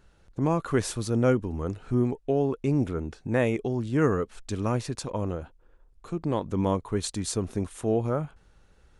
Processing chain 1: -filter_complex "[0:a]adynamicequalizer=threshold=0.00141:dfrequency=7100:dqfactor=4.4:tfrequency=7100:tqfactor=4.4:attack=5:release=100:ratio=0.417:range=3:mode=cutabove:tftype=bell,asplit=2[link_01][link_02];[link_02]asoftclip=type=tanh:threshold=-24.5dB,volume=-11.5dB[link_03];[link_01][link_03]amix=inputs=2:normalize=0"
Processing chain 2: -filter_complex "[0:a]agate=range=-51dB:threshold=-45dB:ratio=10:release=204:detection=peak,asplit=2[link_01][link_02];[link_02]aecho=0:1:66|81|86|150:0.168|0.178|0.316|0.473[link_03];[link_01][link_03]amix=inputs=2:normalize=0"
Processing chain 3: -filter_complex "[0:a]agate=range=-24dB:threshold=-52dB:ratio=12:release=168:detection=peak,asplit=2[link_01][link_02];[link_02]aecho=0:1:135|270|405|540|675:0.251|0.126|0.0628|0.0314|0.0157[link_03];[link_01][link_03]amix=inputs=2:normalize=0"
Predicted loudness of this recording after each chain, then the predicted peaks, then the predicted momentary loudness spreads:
−27.0, −26.5, −27.5 LKFS; −10.0, −9.0, −10.5 dBFS; 8, 8, 9 LU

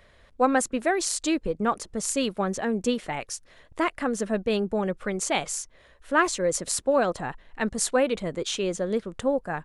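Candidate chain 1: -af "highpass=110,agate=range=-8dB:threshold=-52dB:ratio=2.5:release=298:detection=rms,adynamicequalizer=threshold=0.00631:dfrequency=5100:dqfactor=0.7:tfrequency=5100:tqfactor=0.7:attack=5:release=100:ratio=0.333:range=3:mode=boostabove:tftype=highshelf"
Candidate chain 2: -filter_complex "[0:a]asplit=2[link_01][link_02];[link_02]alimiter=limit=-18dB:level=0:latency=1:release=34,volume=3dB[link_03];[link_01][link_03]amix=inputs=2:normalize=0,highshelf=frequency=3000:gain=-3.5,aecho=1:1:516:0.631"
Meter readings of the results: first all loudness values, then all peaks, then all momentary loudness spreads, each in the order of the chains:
−25.5, −19.5 LKFS; −5.0, −4.5 dBFS; 8, 5 LU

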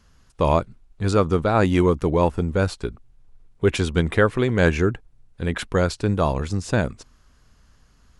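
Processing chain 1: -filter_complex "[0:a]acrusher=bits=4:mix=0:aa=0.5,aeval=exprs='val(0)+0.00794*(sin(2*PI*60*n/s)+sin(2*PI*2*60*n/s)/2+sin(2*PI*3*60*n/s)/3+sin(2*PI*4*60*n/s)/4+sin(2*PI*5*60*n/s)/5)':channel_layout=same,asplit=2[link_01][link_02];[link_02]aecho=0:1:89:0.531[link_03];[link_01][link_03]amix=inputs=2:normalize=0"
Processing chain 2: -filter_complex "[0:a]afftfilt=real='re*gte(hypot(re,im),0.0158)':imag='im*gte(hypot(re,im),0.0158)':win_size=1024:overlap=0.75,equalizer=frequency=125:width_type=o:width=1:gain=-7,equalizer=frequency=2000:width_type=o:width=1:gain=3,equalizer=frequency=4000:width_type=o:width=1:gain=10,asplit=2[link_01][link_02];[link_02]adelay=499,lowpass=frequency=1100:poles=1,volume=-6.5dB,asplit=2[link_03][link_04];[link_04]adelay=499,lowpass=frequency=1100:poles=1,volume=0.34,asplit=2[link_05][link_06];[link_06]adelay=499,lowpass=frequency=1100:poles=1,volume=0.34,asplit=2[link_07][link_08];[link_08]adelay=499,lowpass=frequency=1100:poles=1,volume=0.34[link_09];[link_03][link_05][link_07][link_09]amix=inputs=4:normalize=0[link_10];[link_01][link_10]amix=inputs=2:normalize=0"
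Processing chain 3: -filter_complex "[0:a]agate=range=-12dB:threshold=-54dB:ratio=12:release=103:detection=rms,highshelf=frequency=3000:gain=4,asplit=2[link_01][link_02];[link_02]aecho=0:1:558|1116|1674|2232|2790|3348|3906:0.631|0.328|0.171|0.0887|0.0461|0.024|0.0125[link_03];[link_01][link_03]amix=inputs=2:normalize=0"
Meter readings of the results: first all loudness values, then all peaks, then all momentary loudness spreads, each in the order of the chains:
−20.5, −22.0, −20.5 LKFS; −3.0, −2.0, −2.5 dBFS; 11, 13, 9 LU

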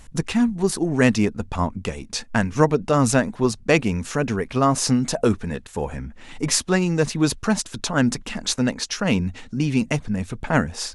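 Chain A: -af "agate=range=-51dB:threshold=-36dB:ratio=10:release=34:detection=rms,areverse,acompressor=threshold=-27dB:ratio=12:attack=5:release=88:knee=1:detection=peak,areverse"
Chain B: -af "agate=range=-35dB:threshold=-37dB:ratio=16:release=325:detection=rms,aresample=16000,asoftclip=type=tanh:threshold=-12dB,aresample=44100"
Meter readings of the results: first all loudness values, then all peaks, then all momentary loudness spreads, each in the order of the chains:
−32.0, −24.0 LKFS; −14.5, −11.0 dBFS; 4, 8 LU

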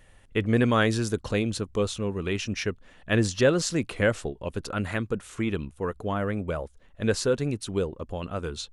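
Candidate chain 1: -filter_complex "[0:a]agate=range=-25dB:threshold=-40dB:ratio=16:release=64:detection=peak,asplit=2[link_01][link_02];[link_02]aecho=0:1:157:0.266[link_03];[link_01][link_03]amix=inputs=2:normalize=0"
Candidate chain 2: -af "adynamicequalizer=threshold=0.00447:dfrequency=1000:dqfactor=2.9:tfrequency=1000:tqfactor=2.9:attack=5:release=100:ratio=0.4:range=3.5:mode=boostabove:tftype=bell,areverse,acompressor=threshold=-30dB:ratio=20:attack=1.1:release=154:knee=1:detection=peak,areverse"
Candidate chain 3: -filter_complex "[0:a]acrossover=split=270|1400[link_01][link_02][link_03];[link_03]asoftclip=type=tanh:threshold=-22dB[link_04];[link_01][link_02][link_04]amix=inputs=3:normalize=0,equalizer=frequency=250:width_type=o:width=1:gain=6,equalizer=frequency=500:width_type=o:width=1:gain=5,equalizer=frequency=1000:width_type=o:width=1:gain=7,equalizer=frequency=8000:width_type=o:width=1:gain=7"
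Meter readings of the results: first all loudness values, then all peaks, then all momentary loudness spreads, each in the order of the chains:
−27.5, −37.5, −22.0 LKFS; −9.5, −21.0, −2.0 dBFS; 11, 4, 11 LU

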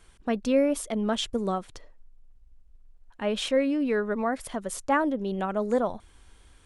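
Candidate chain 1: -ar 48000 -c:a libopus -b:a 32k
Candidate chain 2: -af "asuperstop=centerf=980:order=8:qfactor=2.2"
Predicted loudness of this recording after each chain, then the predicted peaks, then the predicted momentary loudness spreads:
−27.5, −28.0 LKFS; −13.0, −12.5 dBFS; 9, 9 LU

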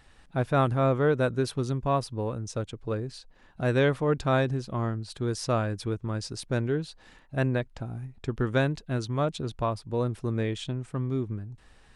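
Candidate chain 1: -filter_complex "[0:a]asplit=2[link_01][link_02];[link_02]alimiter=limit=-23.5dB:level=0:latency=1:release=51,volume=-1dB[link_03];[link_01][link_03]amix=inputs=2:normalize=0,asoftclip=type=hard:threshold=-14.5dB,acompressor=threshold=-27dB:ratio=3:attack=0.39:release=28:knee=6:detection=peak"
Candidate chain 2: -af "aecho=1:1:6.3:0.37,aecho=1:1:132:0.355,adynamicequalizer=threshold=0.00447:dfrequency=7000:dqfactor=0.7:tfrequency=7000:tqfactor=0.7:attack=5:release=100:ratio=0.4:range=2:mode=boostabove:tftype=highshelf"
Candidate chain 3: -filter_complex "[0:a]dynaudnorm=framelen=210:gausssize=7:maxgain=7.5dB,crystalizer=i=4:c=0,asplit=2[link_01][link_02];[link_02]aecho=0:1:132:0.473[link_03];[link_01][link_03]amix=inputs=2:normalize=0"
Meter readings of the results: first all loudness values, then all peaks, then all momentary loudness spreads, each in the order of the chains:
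−31.5, −28.0, −19.5 LKFS; −21.5, −10.5, −3.0 dBFS; 6, 12, 11 LU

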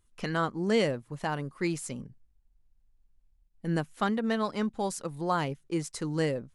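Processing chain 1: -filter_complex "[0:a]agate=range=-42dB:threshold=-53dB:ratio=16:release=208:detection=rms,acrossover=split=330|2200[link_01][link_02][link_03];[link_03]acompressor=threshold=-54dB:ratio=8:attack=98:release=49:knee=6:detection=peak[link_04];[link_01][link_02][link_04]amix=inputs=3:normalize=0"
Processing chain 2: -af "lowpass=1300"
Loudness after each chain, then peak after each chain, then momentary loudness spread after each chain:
−31.5, −32.0 LKFS; −14.0, −15.5 dBFS; 8, 8 LU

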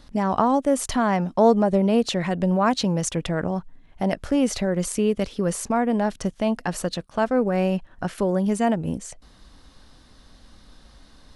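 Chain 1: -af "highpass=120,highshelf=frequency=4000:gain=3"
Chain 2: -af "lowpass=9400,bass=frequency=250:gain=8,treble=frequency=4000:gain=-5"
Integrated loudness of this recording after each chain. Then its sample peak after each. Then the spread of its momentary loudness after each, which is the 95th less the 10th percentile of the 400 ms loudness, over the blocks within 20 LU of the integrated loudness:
−23.0, −20.0 LKFS; −5.0, −4.0 dBFS; 8, 8 LU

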